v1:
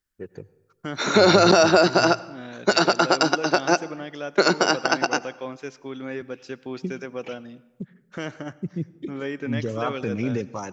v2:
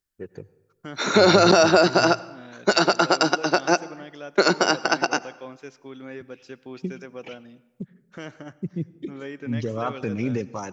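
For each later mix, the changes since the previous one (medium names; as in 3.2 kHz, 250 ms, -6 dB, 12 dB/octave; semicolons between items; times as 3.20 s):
second voice -5.5 dB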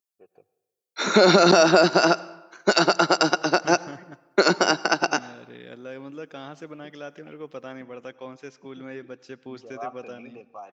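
first voice: add vowel filter a; second voice: entry +2.80 s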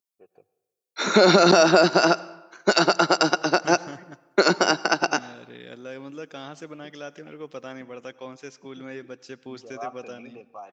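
second voice: add treble shelf 5.5 kHz +11.5 dB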